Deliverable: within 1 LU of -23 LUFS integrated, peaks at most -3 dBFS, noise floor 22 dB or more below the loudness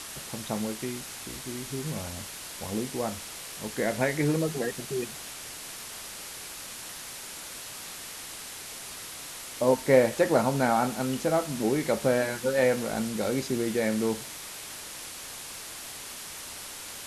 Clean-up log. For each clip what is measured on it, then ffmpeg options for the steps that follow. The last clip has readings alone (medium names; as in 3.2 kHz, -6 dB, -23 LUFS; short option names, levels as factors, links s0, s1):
noise floor -41 dBFS; noise floor target -52 dBFS; loudness -30.0 LUFS; peak level -7.0 dBFS; loudness target -23.0 LUFS
-> -af "afftdn=nr=11:nf=-41"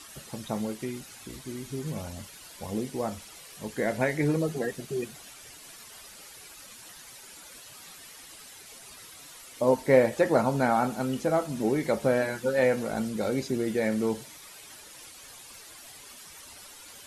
noise floor -48 dBFS; noise floor target -50 dBFS
-> -af "afftdn=nr=6:nf=-48"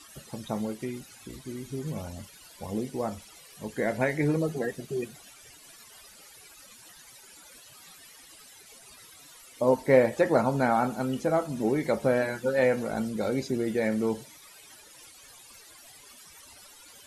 noise floor -52 dBFS; loudness -28.0 LUFS; peak level -7.0 dBFS; loudness target -23.0 LUFS
-> -af "volume=1.78,alimiter=limit=0.708:level=0:latency=1"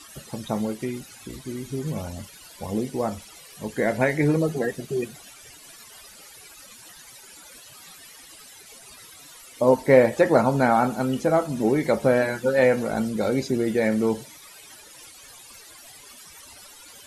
loudness -23.0 LUFS; peak level -3.0 dBFS; noise floor -47 dBFS